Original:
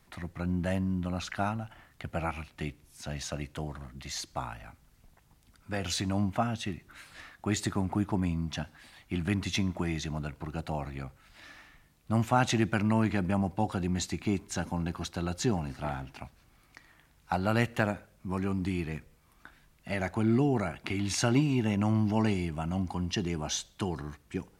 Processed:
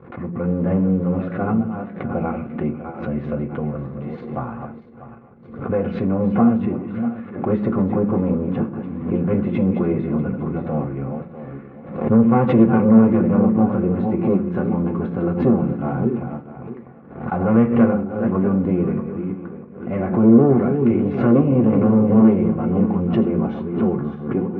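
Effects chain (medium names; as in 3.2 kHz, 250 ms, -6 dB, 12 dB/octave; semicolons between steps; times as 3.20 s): backward echo that repeats 322 ms, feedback 45%, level -8.5 dB; tilt EQ -4.5 dB/octave; waveshaping leveller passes 2; cabinet simulation 230–2200 Hz, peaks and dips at 230 Hz +5 dB, 340 Hz +5 dB, 500 Hz +9 dB, 790 Hz -4 dB, 1.2 kHz +5 dB, 1.8 kHz -7 dB; comb of notches 310 Hz; on a send at -2.5 dB: reverberation RT60 0.45 s, pre-delay 3 ms; on the sum: swell ahead of each attack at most 85 dB/s; trim -2 dB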